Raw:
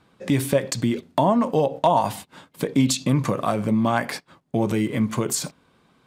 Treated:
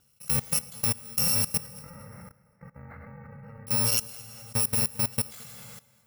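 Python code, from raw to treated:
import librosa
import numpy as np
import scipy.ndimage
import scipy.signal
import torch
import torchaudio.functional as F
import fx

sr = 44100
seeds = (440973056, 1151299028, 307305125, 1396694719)

y = fx.bit_reversed(x, sr, seeds[0], block=128)
y = fx.ellip_lowpass(y, sr, hz=2000.0, order=4, stop_db=40, at=(1.57, 3.67))
y = fx.rev_plate(y, sr, seeds[1], rt60_s=2.2, hf_ratio=0.75, predelay_ms=0, drr_db=4.5)
y = fx.level_steps(y, sr, step_db=21)
y = y + 10.0 ** (-21.0 / 20.0) * np.pad(y, (int(219 * sr / 1000.0), 0))[:len(y)]
y = y * librosa.db_to_amplitude(-3.0)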